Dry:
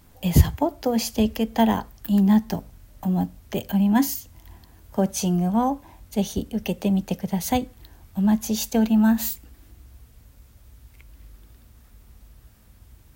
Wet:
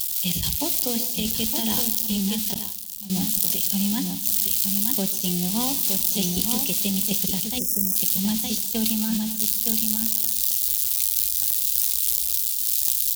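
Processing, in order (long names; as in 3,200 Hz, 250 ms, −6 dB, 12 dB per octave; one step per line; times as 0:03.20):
spike at every zero crossing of −20 dBFS
high shelf with overshoot 2,400 Hz +13.5 dB, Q 1.5
compressor whose output falls as the input rises −17 dBFS, ratio −0.5
dynamic equaliser 670 Hz, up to −5 dB, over −40 dBFS, Q 1.9
on a send: single-tap delay 916 ms −6 dB
on the sum: four-comb reverb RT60 2.6 s, combs from 25 ms, DRR 14 dB
0:02.54–0:03.10: downward expander −4 dBFS
0:07.59–0:07.96: gain on a spectral selection 630–5,100 Hz −29 dB
level that may fall only so fast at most 29 dB per second
level −8 dB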